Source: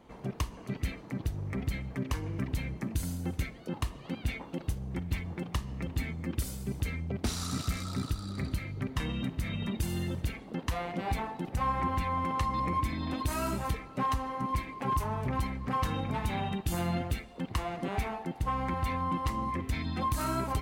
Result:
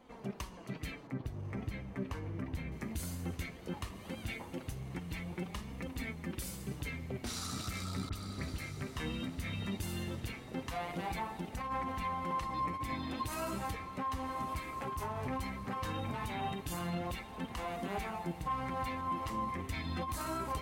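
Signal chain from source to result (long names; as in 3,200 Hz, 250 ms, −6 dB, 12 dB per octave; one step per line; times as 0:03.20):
low-shelf EQ 260 Hz −5 dB
feedback delay with all-pass diffusion 1,229 ms, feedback 43%, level −13.5 dB
compressor whose output falls as the input rises −31 dBFS, ratio −0.5
0:01.07–0:02.72: high-shelf EQ 2,700 Hz −10.5 dB
brickwall limiter −27 dBFS, peak gain reduction 6.5 dB
flanger 0.17 Hz, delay 3.8 ms, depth 9.6 ms, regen +48%
0:08.09–0:08.71: all-pass dispersion highs, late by 41 ms, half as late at 2,300 Hz
level +2 dB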